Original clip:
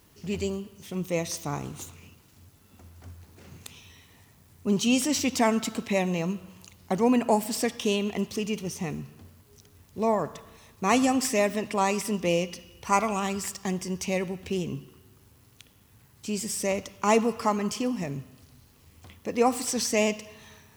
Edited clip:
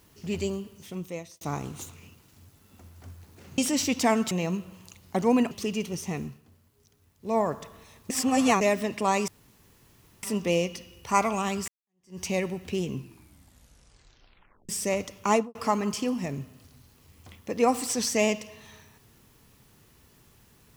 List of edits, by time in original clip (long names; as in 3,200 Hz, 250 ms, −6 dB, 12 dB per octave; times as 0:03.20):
0:00.73–0:01.41: fade out linear
0:03.58–0:04.94: remove
0:05.67–0:06.07: remove
0:07.27–0:08.24: remove
0:08.98–0:10.11: duck −9 dB, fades 0.16 s
0:10.83–0:11.34: reverse
0:12.01: splice in room tone 0.95 s
0:13.46–0:13.98: fade in exponential
0:14.70: tape stop 1.77 s
0:17.07–0:17.33: fade out and dull